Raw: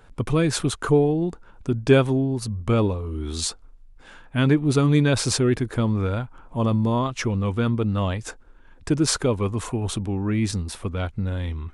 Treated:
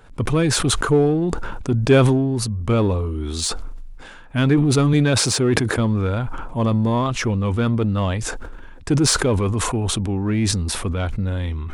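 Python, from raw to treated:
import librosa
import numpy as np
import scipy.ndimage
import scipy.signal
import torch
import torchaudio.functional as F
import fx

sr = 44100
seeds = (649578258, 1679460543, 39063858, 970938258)

p1 = fx.highpass(x, sr, hz=97.0, slope=12, at=(4.93, 5.78))
p2 = np.clip(10.0 ** (21.5 / 20.0) * p1, -1.0, 1.0) / 10.0 ** (21.5 / 20.0)
p3 = p1 + (p2 * librosa.db_to_amplitude(-7.5))
y = fx.sustainer(p3, sr, db_per_s=28.0)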